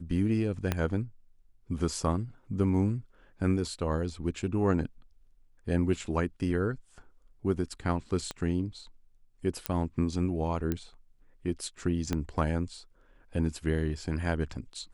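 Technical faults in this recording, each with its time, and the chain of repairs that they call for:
0:00.72: click −13 dBFS
0:08.31: click −20 dBFS
0:09.66: click −12 dBFS
0:10.72: click −17 dBFS
0:12.13: click −16 dBFS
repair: click removal

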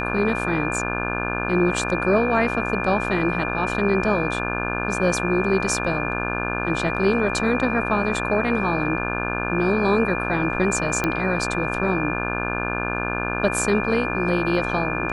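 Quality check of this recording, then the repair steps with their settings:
mains buzz 60 Hz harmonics 29 −27 dBFS
whistle 2,400 Hz −28 dBFS
0:11.04: click −8 dBFS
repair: click removal
notch filter 2,400 Hz, Q 30
hum removal 60 Hz, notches 29

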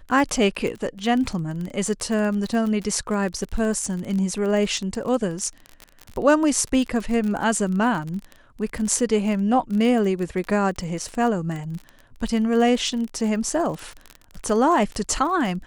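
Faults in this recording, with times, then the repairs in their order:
surface crackle 29 per second −27 dBFS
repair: click removal

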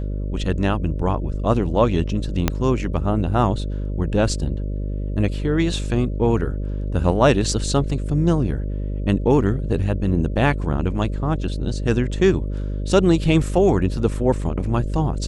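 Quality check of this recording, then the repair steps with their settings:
mains buzz 50 Hz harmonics 12 −25 dBFS
0:02.48: click −4 dBFS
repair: click removal
hum removal 50 Hz, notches 12

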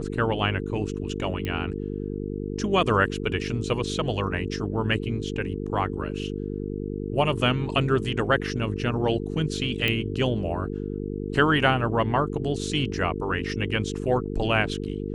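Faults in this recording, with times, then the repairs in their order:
mains buzz 50 Hz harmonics 9 −31 dBFS
0:01.45: click −17 dBFS
0:09.88: click −11 dBFS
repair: click removal
hum removal 50 Hz, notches 9

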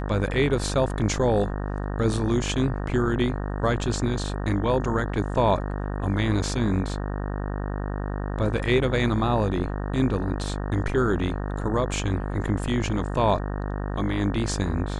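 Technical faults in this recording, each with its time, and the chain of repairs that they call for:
mains buzz 50 Hz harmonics 37 −29 dBFS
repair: hum removal 50 Hz, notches 37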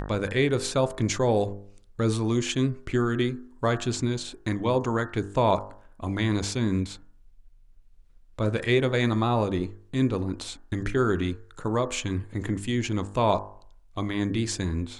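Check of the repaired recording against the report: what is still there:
none of them is left

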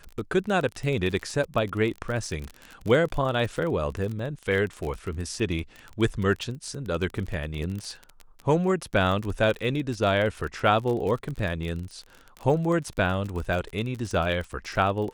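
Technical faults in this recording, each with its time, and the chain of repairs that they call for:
surface crackle 32 per second −30 dBFS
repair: click removal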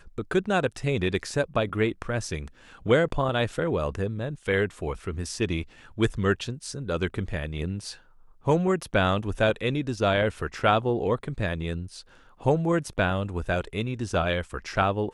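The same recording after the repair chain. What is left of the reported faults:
none of them is left

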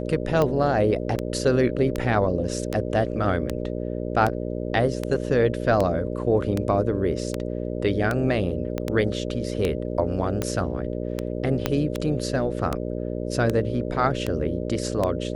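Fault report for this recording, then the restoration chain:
mains buzz 60 Hz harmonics 10 −29 dBFS
scratch tick 78 rpm −11 dBFS
0:08.78: click −14 dBFS
0:11.66: click −7 dBFS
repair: click removal
hum removal 60 Hz, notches 10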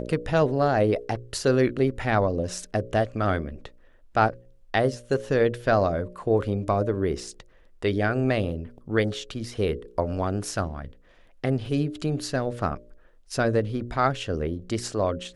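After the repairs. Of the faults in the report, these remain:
0:08.78: click
0:11.66: click

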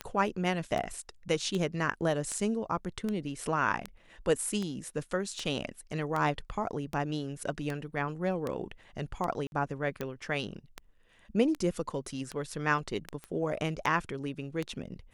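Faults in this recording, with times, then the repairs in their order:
scratch tick 78 rpm −20 dBFS
0:09.47–0:09.52: drop-out 51 ms
0:13.24: click −27 dBFS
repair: click removal
repair the gap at 0:09.47, 51 ms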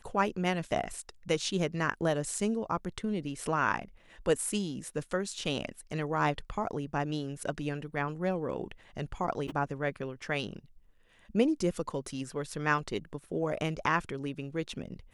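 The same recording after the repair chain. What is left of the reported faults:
none of them is left

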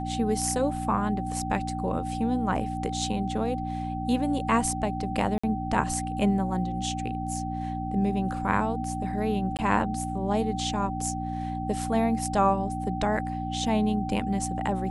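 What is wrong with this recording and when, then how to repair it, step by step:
mains hum 60 Hz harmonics 5 −33 dBFS
whistle 770 Hz −33 dBFS
0:05.38–0:05.43: drop-out 55 ms
0:09.57–0:09.59: drop-out 18 ms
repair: notch filter 770 Hz, Q 30
hum removal 60 Hz, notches 5
repair the gap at 0:05.38, 55 ms
repair the gap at 0:09.57, 18 ms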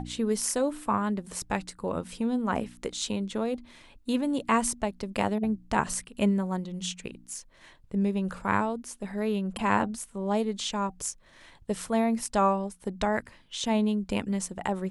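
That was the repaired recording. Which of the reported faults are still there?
none of them is left

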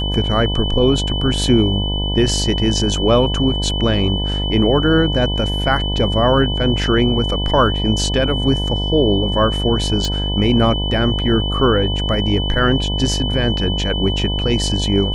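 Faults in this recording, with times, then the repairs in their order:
mains buzz 50 Hz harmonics 20 −21 dBFS
whistle 3,000 Hz −23 dBFS
0:10.05: click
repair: click removal
notch filter 3,000 Hz, Q 30
hum removal 50 Hz, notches 20

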